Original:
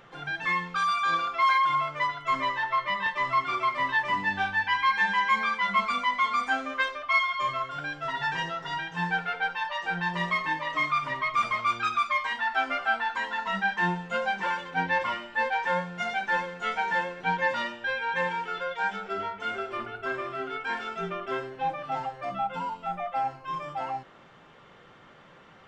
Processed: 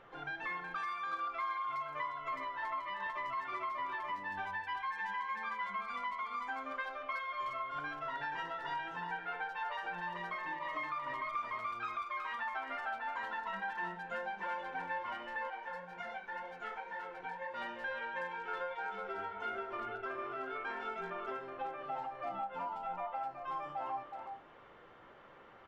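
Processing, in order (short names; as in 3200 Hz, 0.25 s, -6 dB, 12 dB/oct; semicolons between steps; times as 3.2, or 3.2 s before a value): LPF 1300 Hz 6 dB/oct; resonator 330 Hz, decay 0.3 s, harmonics odd, mix 50%; compressor 20:1, threshold -40 dBFS, peak gain reduction 13.5 dB; bell 160 Hz -10 dB 1.3 oct; de-hum 84.31 Hz, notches 13; speakerphone echo 0.37 s, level -6 dB; reverb RT60 0.40 s, pre-delay 17 ms, DRR 14 dB; 15.5–17.54 flange 1.9 Hz, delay 6.6 ms, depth 6.7 ms, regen -38%; gain +4 dB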